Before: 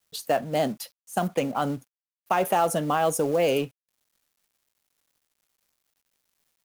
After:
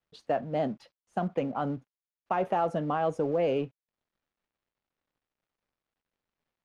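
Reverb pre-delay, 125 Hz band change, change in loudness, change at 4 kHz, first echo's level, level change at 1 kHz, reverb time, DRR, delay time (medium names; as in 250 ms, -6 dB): no reverb, -3.0 dB, -5.0 dB, -13.0 dB, no echo, -5.0 dB, no reverb, no reverb, no echo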